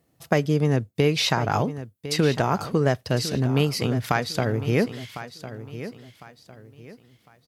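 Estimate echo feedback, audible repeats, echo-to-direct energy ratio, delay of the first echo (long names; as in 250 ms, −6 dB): 32%, 3, −12.5 dB, 1,054 ms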